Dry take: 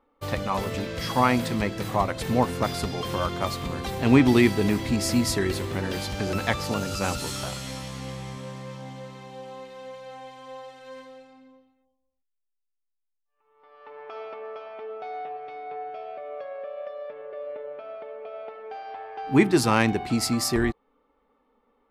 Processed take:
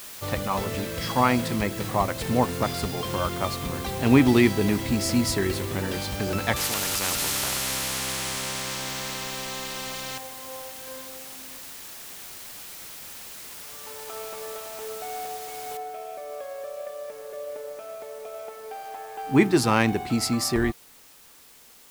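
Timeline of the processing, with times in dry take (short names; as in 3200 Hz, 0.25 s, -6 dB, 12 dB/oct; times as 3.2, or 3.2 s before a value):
6.56–10.18 spectral compressor 4:1
15.77 noise floor step -41 dB -52 dB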